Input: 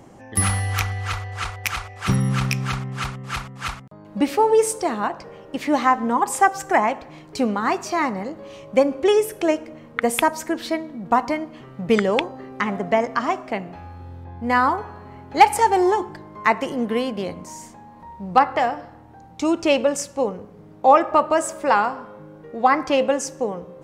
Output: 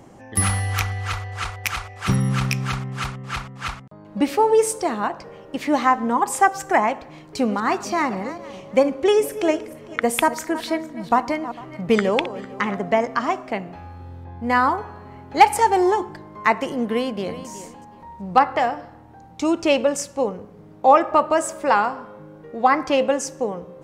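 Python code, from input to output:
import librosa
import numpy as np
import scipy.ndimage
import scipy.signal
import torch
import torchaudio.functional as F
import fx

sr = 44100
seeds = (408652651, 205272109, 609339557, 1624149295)

y = fx.high_shelf(x, sr, hz=9100.0, db=-7.5, at=(3.12, 4.21))
y = fx.reverse_delay_fb(y, sr, ms=226, feedback_pct=41, wet_db=-14.0, at=(7.25, 12.79))
y = fx.echo_throw(y, sr, start_s=16.87, length_s=0.6, ms=370, feedback_pct=20, wet_db=-13.5)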